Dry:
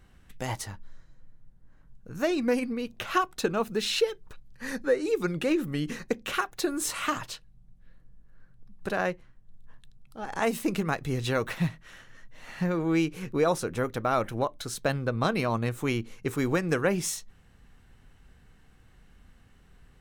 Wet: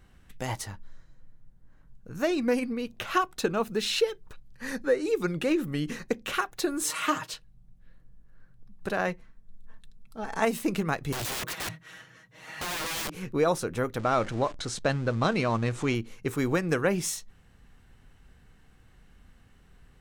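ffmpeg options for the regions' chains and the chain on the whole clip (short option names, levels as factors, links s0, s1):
-filter_complex "[0:a]asettb=1/sr,asplit=3[s0][s1][s2];[s0]atrim=end=6.834[s3];[s1]atrim=start=6.83:end=7.34,asetpts=PTS-STARTPTS,afade=t=in:d=0.004:c=qsin,afade=t=out:st=0.506:d=0.004:c=qsin,highpass=150,bandreject=f=730:w=9.4,aecho=1:1:6.4:0.63,atrim=end_sample=22491[s4];[s2]atrim=start=7.336[s5];[s3][s4]acrossfade=d=0.004:c1=hsin:c2=qsin[s6];[s6][s5]acrossfade=d=0.004:c1=qsin:c2=hsin,asettb=1/sr,asplit=3[s7][s8][s9];[s7]atrim=end=9.074[s10];[s8]atrim=start=9.07:end=10.45,asetpts=PTS-STARTPTS,afade=t=in:d=0.004:c=qsin,afade=t=out:st=1.376:d=0.004:c=qsin,bandreject=f=3000:w=12,aecho=1:1:4.5:0.51,atrim=end_sample=60858[s11];[s9]atrim=start=10.446[s12];[s10][s11]acrossfade=d=0.004:c1=hsin:c2=qsin[s13];[s13][s12]acrossfade=d=0.004:c1=qsin:c2=hsin,asettb=1/sr,asplit=3[s14][s15][s16];[s14]atrim=end=11.124[s17];[s15]atrim=start=11.12:end=13.15,asetpts=PTS-STARTPTS,afade=t=in:d=0.004:c=qsin,afade=t=out:st=2.026:d=0.004:c=qsin,highpass=f=73:w=0.5412,highpass=f=73:w=1.3066,aecho=1:1:6.3:0.72,atrim=end_sample=89523,aeval=exprs='(mod(25.1*val(0)+1,2)-1)/25.1':c=same[s18];[s16]atrim=start=13.146[s19];[s17][s18]acrossfade=d=0.004:c1=hsin:c2=qsin[s20];[s20][s19]acrossfade=d=0.004:c1=qsin:c2=hsin,asettb=1/sr,asplit=3[s21][s22][s23];[s21]atrim=end=13.994[s24];[s22]atrim=start=13.99:end=15.95,asetpts=PTS-STARTPTS,afade=t=in:d=0.004:c=qsin,afade=t=out:st=1.956:d=0.004:c=qsin,aeval=exprs='val(0)+0.5*0.0133*sgn(val(0))':c=same,lowpass=f=8200:w=0.5412,lowpass=f=8200:w=1.3066[s25];[s23]atrim=start=15.946[s26];[s24][s25]acrossfade=d=0.004:c1=hsin:c2=qsin[s27];[s27][s26]acrossfade=d=0.004:c1=qsin:c2=hsin"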